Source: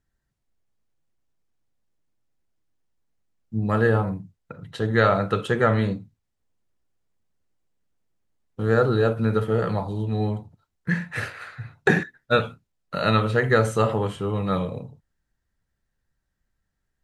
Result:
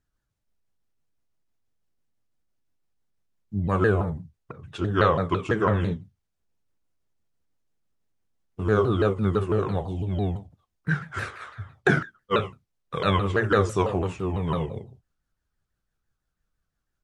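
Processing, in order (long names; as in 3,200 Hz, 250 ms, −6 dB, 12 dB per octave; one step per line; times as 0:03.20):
pitch shifter swept by a sawtooth −4.5 semitones, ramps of 167 ms
level −1 dB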